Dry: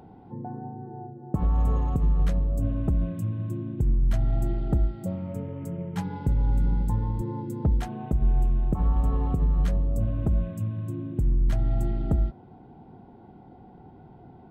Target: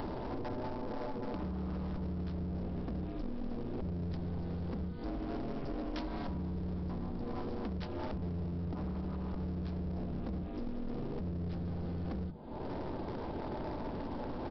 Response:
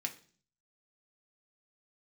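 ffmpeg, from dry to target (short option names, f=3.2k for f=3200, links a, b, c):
-filter_complex "[0:a]acompressor=mode=upward:threshold=-29dB:ratio=2.5,asplit=2[a][b];[b]aecho=0:1:82:0.075[c];[a][c]amix=inputs=2:normalize=0,aeval=exprs='val(0)*sin(2*PI*130*n/s)':c=same,asplit=3[d][e][f];[e]asetrate=35002,aresample=44100,atempo=1.25992,volume=-11dB[g];[f]asetrate=37084,aresample=44100,atempo=1.18921,volume=-11dB[h];[d][g][h]amix=inputs=3:normalize=0,acompressor=threshold=-34dB:ratio=10,bandreject=f=51.08:t=h:w=4,bandreject=f=102.16:t=h:w=4,bandreject=f=153.24:t=h:w=4,bandreject=f=204.32:t=h:w=4,bandreject=f=255.4:t=h:w=4,bandreject=f=306.48:t=h:w=4,bandreject=f=357.56:t=h:w=4,bandreject=f=408.64:t=h:w=4,bandreject=f=459.72:t=h:w=4,bandreject=f=510.8:t=h:w=4,bandreject=f=561.88:t=h:w=4,bandreject=f=612.96:t=h:w=4,bandreject=f=664.04:t=h:w=4,bandreject=f=715.12:t=h:w=4,bandreject=f=766.2:t=h:w=4,bandreject=f=817.28:t=h:w=4,bandreject=f=868.36:t=h:w=4,bandreject=f=919.44:t=h:w=4,bandreject=f=970.52:t=h:w=4,bandreject=f=1.0216k:t=h:w=4,bandreject=f=1.07268k:t=h:w=4,bandreject=f=1.12376k:t=h:w=4,bandreject=f=1.17484k:t=h:w=4,bandreject=f=1.22592k:t=h:w=4,bandreject=f=1.277k:t=h:w=4,bandreject=f=1.32808k:t=h:w=4,bandreject=f=1.37916k:t=h:w=4,bandreject=f=1.43024k:t=h:w=4,bandreject=f=1.48132k:t=h:w=4,aresample=11025,asoftclip=type=hard:threshold=-39.5dB,aresample=44100,bass=f=250:g=-1,treble=f=4k:g=15,volume=5.5dB"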